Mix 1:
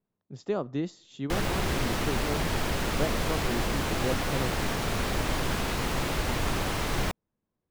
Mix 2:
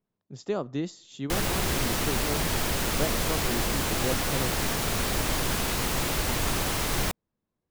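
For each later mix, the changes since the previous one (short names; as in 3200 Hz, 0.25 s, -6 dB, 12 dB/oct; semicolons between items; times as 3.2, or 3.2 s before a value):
master: add high shelf 5400 Hz +11 dB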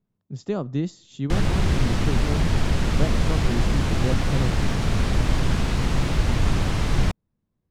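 background: add air absorption 74 m; master: add tone controls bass +11 dB, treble -1 dB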